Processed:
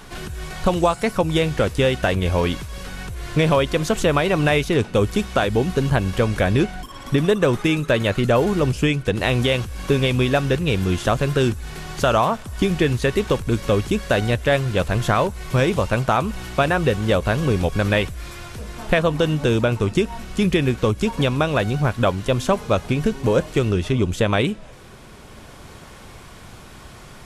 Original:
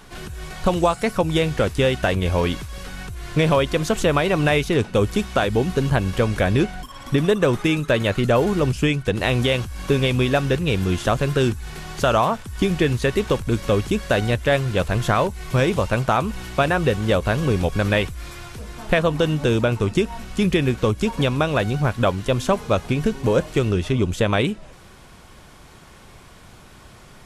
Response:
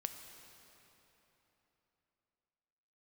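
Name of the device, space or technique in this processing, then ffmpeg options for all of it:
ducked reverb: -filter_complex "[0:a]asplit=3[s0][s1][s2];[1:a]atrim=start_sample=2205[s3];[s1][s3]afir=irnorm=-1:irlink=0[s4];[s2]apad=whole_len=1201926[s5];[s4][s5]sidechaincompress=threshold=0.0178:ratio=8:attack=16:release=860,volume=0.794[s6];[s0][s6]amix=inputs=2:normalize=0"

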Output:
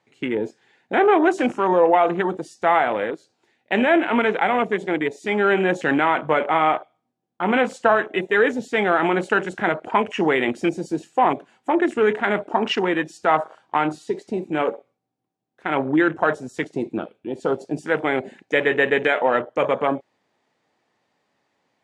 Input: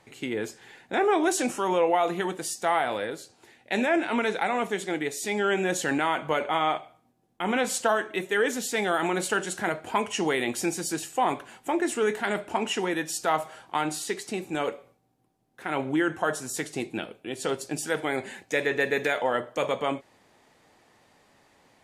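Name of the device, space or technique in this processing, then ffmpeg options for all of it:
over-cleaned archive recording: -af "highpass=120,lowpass=6400,afwtdn=0.02,volume=2.24"

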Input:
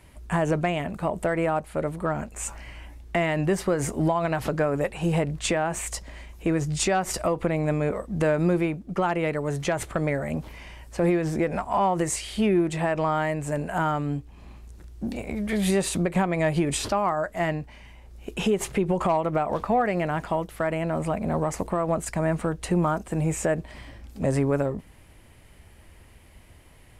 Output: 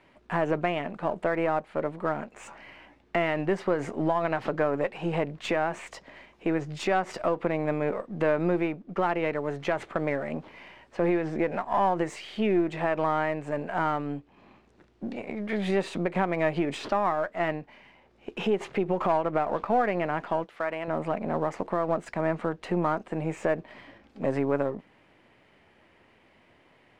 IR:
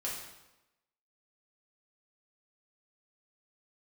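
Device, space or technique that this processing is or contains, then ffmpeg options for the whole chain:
crystal radio: -filter_complex "[0:a]highpass=230,lowpass=3000,aeval=exprs='if(lt(val(0),0),0.708*val(0),val(0))':c=same,asettb=1/sr,asplit=3[s0][s1][s2];[s0]atrim=end=20.444[s3];[s1]atrim=start=20.44:end=20.88,asetpts=PTS-STARTPTS,afade=t=in:d=0.004:c=qsin,afade=t=out:st=0.436:d=0.004:c=qsin,lowshelf=f=370:g=-11[s4];[s2]atrim=start=20.876[s5];[s3][s4]acrossfade=d=0.004:c1=hsin:c2=qsin[s6];[s6][s5]acrossfade=d=0.004:c1=qsin:c2=hsin"

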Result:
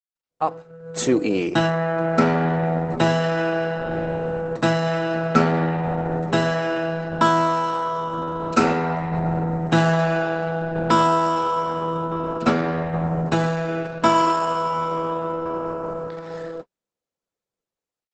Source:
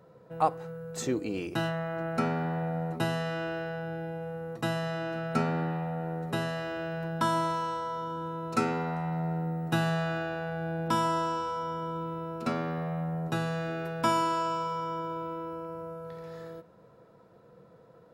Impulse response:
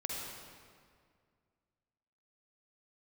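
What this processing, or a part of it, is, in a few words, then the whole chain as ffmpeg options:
video call: -af "highpass=160,dynaudnorm=f=240:g=5:m=4.73,agate=range=0.00355:threshold=0.0282:ratio=16:detection=peak" -ar 48000 -c:a libopus -b:a 12k

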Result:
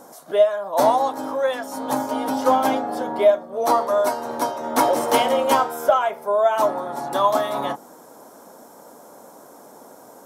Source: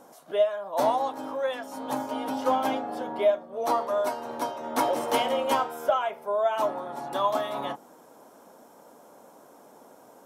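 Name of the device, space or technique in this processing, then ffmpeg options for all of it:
exciter from parts: -filter_complex "[0:a]asplit=2[s0][s1];[s1]highpass=f=2600:w=0.5412,highpass=f=2600:w=1.3066,asoftclip=type=tanh:threshold=0.0119,volume=0.631[s2];[s0][s2]amix=inputs=2:normalize=0,volume=2.24"

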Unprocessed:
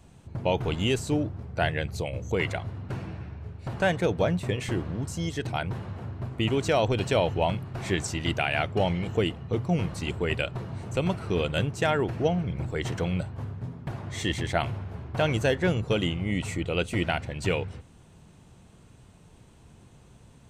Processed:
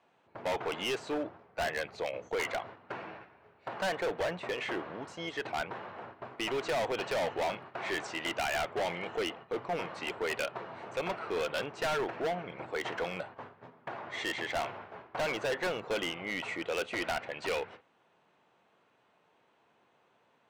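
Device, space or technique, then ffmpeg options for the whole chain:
walkie-talkie: -af "highpass=580,lowpass=2500,asoftclip=type=hard:threshold=0.0237,agate=range=0.398:threshold=0.00282:ratio=16:detection=peak,volume=1.58"

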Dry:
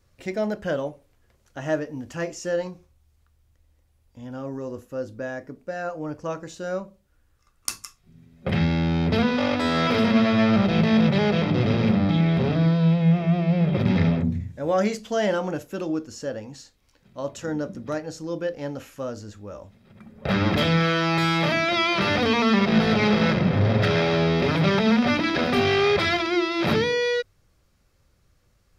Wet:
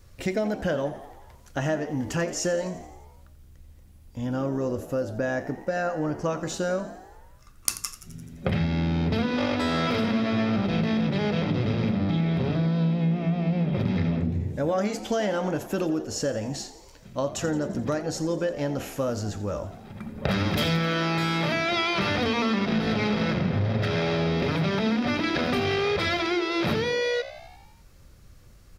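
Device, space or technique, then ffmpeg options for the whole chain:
ASMR close-microphone chain: -filter_complex "[0:a]lowshelf=f=100:g=6.5,acompressor=threshold=0.0282:ratio=6,highshelf=f=7200:g=4,asettb=1/sr,asplit=3[s0][s1][s2];[s0]atrim=end=20.314[s3];[s1]atrim=start=20.31:end=20.77,asetpts=PTS-STARTPTS,afade=t=in:d=0.004:c=qsin,afade=t=out:st=0.456:d=0.004:c=qsin,highshelf=f=5400:g=11.5[s4];[s2]atrim=start=20.766[s5];[s3][s4]acrossfade=d=0.004:c1=hsin:c2=qsin[s6];[s6][s5]acrossfade=d=0.004:c1=qsin:c2=hsin,asplit=8[s7][s8][s9][s10][s11][s12][s13][s14];[s8]adelay=86,afreqshift=62,volume=0.178[s15];[s9]adelay=172,afreqshift=124,volume=0.112[s16];[s10]adelay=258,afreqshift=186,volume=0.0708[s17];[s11]adelay=344,afreqshift=248,volume=0.0447[s18];[s12]adelay=430,afreqshift=310,volume=0.0279[s19];[s13]adelay=516,afreqshift=372,volume=0.0176[s20];[s14]adelay=602,afreqshift=434,volume=0.0111[s21];[s7][s15][s16][s17][s18][s19][s20][s21]amix=inputs=8:normalize=0,volume=2.37"

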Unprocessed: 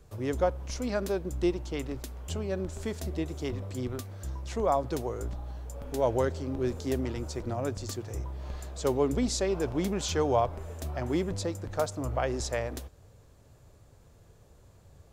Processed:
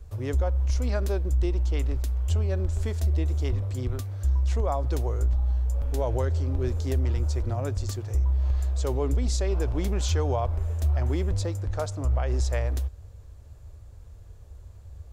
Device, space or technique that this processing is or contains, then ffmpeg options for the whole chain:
car stereo with a boomy subwoofer: -filter_complex "[0:a]lowshelf=f=110:t=q:w=1.5:g=12.5,alimiter=limit=0.141:level=0:latency=1:release=91,asettb=1/sr,asplit=3[s0][s1][s2];[s0]atrim=end=11.654[s3];[s1]atrim=start=11.65:end=12.28,asetpts=PTS-STARTPTS,afade=t=in:d=0.004:c=qsin,afade=t=out:st=0.626:d=0.004:c=qsin,lowpass=11000[s4];[s2]atrim=start=12.276[s5];[s3][s4]acrossfade=d=0.004:c1=hsin:c2=qsin[s6];[s6][s5]acrossfade=d=0.004:c1=qsin:c2=hsin"

